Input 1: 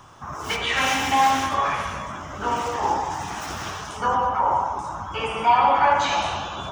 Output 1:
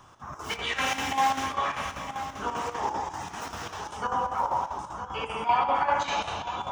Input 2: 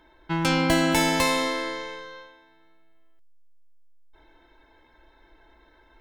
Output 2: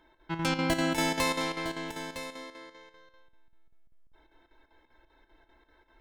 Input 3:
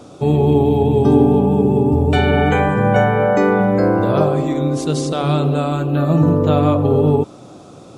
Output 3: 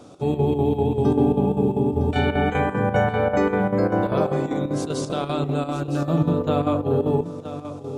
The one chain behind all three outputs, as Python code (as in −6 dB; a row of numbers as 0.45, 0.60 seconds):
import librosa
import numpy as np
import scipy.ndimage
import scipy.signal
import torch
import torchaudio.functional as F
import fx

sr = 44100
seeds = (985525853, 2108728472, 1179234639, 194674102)

y = fx.hum_notches(x, sr, base_hz=50, count=3)
y = y + 10.0 ** (-11.5 / 20.0) * np.pad(y, (int(959 * sr / 1000.0), 0))[:len(y)]
y = fx.chopper(y, sr, hz=5.1, depth_pct=60, duty_pct=75)
y = F.gain(torch.from_numpy(y), -5.5).numpy()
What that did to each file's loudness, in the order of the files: −6.5, −7.0, −6.5 LU